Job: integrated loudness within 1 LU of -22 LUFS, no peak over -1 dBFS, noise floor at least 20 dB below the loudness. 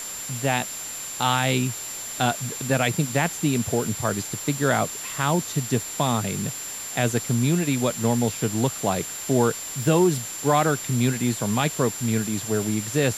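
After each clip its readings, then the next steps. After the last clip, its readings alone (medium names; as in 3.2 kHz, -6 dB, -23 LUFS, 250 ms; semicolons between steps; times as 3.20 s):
steady tone 7.3 kHz; tone level -33 dBFS; noise floor -34 dBFS; noise floor target -44 dBFS; loudness -24.0 LUFS; peak level -7.5 dBFS; loudness target -22.0 LUFS
-> band-stop 7.3 kHz, Q 30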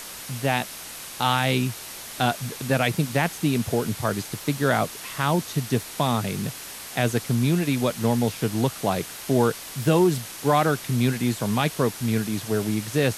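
steady tone not found; noise floor -38 dBFS; noise floor target -45 dBFS
-> noise reduction 7 dB, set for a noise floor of -38 dBFS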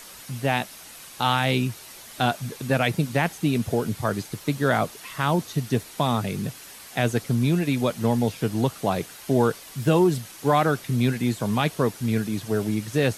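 noise floor -44 dBFS; noise floor target -45 dBFS
-> noise reduction 6 dB, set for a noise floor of -44 dBFS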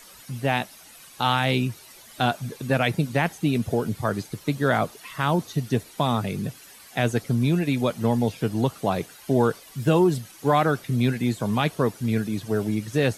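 noise floor -48 dBFS; loudness -24.5 LUFS; peak level -8.0 dBFS; loudness target -22.0 LUFS
-> trim +2.5 dB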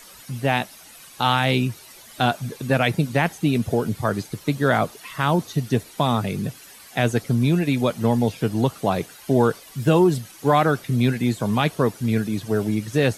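loudness -22.0 LUFS; peak level -5.5 dBFS; noise floor -46 dBFS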